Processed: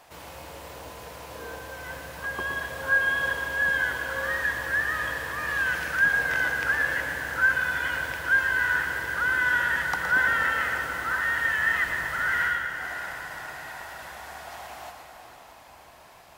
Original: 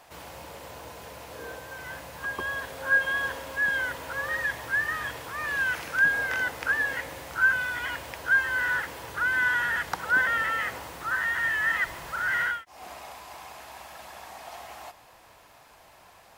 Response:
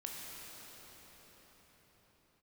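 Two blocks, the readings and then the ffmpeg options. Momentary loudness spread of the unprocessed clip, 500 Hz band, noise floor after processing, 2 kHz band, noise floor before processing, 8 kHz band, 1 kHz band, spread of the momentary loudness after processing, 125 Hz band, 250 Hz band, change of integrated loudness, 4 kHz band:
20 LU, +2.0 dB, -50 dBFS, +2.0 dB, -54 dBFS, +1.5 dB, +1.5 dB, 18 LU, +3.5 dB, +2.5 dB, +1.5 dB, +1.5 dB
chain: -filter_complex "[0:a]asplit=2[s0][s1];[1:a]atrim=start_sample=2205,asetrate=36162,aresample=44100,adelay=116[s2];[s1][s2]afir=irnorm=-1:irlink=0,volume=0.631[s3];[s0][s3]amix=inputs=2:normalize=0"

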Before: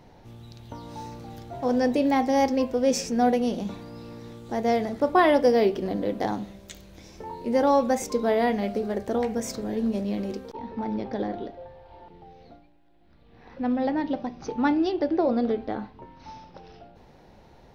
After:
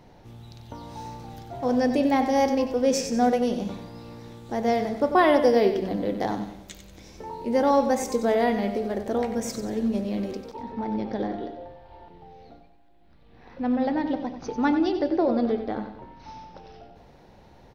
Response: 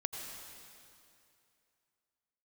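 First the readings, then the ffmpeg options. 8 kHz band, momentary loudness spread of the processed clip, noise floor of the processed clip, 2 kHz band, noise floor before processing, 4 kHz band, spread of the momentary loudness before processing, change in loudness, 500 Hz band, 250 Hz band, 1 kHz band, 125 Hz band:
+0.5 dB, 21 LU, -53 dBFS, +0.5 dB, -53 dBFS, +0.5 dB, 20 LU, +0.5 dB, +0.5 dB, +0.5 dB, +0.5 dB, +0.5 dB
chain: -af "aecho=1:1:93|186|279|372|465:0.316|0.142|0.064|0.0288|0.013"

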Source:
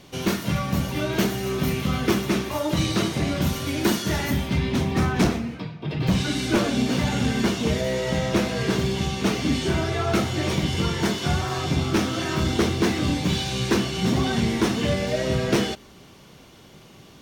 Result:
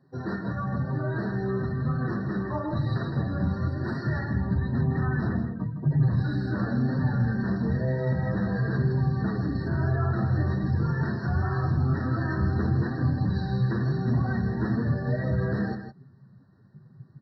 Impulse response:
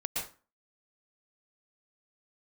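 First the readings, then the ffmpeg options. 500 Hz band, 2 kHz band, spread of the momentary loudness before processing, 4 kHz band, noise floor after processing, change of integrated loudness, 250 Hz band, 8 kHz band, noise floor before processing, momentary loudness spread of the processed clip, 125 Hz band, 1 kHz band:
-8.0 dB, -7.0 dB, 3 LU, under -20 dB, -53 dBFS, -3.5 dB, -4.5 dB, under -35 dB, -48 dBFS, 4 LU, +1.5 dB, -6.5 dB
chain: -af "highpass=71,afftdn=nr=16:nf=-36,lowpass=f=2400:t=q:w=5.7,equalizer=f=140:w=3:g=4.5,alimiter=limit=0.158:level=0:latency=1:release=11,acompressor=threshold=0.0708:ratio=4,asubboost=boost=2.5:cutoff=220,flanger=delay=7.3:depth=3.3:regen=-6:speed=1:shape=triangular,aecho=1:1:160:0.355,afftfilt=real='re*eq(mod(floor(b*sr/1024/1900),2),0)':imag='im*eq(mod(floor(b*sr/1024/1900),2),0)':win_size=1024:overlap=0.75"

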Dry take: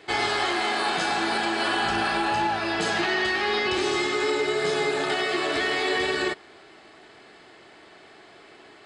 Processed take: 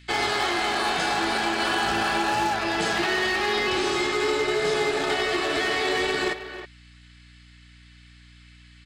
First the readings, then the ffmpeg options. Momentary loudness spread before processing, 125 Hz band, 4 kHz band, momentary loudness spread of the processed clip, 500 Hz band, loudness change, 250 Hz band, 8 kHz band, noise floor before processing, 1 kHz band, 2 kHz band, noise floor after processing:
2 LU, +1.5 dB, +0.5 dB, 2 LU, +0.5 dB, +0.5 dB, +0.5 dB, +2.5 dB, -51 dBFS, +0.5 dB, +0.5 dB, -51 dBFS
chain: -filter_complex "[0:a]acrossover=split=120|1700[s0][s1][s2];[s1]acrusher=bits=4:mix=0:aa=0.5[s3];[s0][s3][s2]amix=inputs=3:normalize=0,aeval=exprs='val(0)+0.00316*(sin(2*PI*60*n/s)+sin(2*PI*2*60*n/s)/2+sin(2*PI*3*60*n/s)/3+sin(2*PI*4*60*n/s)/4+sin(2*PI*5*60*n/s)/5)':c=same,asplit=2[s4][s5];[s5]adelay=320,highpass=300,lowpass=3400,asoftclip=type=hard:threshold=0.0841,volume=0.316[s6];[s4][s6]amix=inputs=2:normalize=0"

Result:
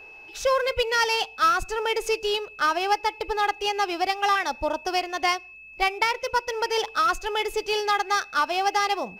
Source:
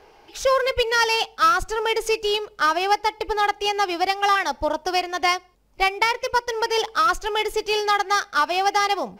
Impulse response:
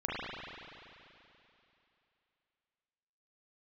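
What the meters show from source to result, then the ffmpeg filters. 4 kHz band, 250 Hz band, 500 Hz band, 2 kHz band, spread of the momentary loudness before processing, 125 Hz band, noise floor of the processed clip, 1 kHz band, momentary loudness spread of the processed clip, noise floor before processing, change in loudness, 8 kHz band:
-3.0 dB, -3.0 dB, -3.0 dB, -3.0 dB, 5 LU, no reading, -46 dBFS, -3.0 dB, 5 LU, -53 dBFS, -3.0 dB, -3.0 dB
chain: -af "aeval=exprs='val(0)+0.01*sin(2*PI*2600*n/s)':c=same,volume=0.708"

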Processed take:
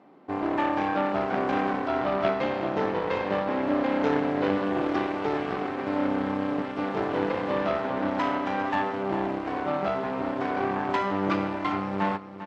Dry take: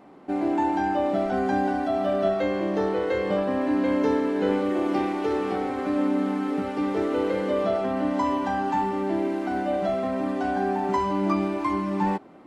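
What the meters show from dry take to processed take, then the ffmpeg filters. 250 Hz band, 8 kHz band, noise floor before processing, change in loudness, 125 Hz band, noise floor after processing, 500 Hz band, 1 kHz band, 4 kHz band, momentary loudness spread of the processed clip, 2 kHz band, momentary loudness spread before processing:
-3.5 dB, no reading, -31 dBFS, -2.0 dB, -1.5 dB, -34 dBFS, -2.5 dB, -1.0 dB, +1.0 dB, 4 LU, +2.0 dB, 3 LU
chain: -af "aeval=exprs='0.282*(cos(1*acos(clip(val(0)/0.282,-1,1)))-cos(1*PI/2))+0.0398*(cos(3*acos(clip(val(0)/0.282,-1,1)))-cos(3*PI/2))+0.0447*(cos(6*acos(clip(val(0)/0.282,-1,1)))-cos(6*PI/2))':c=same,highpass=130,lowpass=4900,aecho=1:1:399:0.251"

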